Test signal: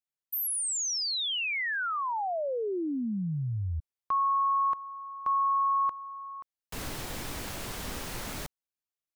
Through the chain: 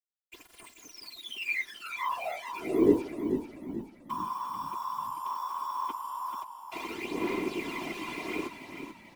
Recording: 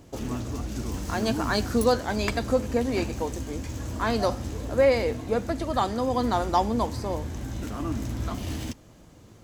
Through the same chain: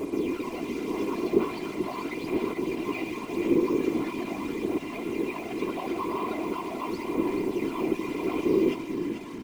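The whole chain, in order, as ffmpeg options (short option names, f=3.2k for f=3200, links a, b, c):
-filter_complex "[0:a]equalizer=f=1.7k:t=o:w=0.43:g=4,bandreject=f=50:t=h:w=6,bandreject=f=100:t=h:w=6,bandreject=f=150:t=h:w=6,bandreject=f=200:t=h:w=6,bandreject=f=250:t=h:w=6,alimiter=limit=-21dB:level=0:latency=1,aphaser=in_gain=1:out_gain=1:delay=3.1:decay=0.73:speed=0.41:type=sinusoidal,asplit=2[a][b];[b]highpass=f=720:p=1,volume=36dB,asoftclip=type=tanh:threshold=-9.5dB[c];[a][c]amix=inputs=2:normalize=0,lowpass=f=6.8k:p=1,volume=-6dB,asplit=3[d][e][f];[d]bandpass=f=300:t=q:w=8,volume=0dB[g];[e]bandpass=f=870:t=q:w=8,volume=-6dB[h];[f]bandpass=f=2.24k:t=q:w=8,volume=-9dB[i];[g][h][i]amix=inputs=3:normalize=0,afftfilt=real='hypot(re,im)*cos(PI*b)':imag='0':win_size=512:overlap=0.75,acrusher=bits=7:mix=0:aa=0.5,afftfilt=real='hypot(re,im)*cos(2*PI*random(0))':imag='hypot(re,im)*sin(2*PI*random(1))':win_size=512:overlap=0.75,asplit=6[j][k][l][m][n][o];[k]adelay=437,afreqshift=-34,volume=-8dB[p];[l]adelay=874,afreqshift=-68,volume=-15.3dB[q];[m]adelay=1311,afreqshift=-102,volume=-22.7dB[r];[n]adelay=1748,afreqshift=-136,volume=-30dB[s];[o]adelay=2185,afreqshift=-170,volume=-37.3dB[t];[j][p][q][r][s][t]amix=inputs=6:normalize=0,volume=6.5dB"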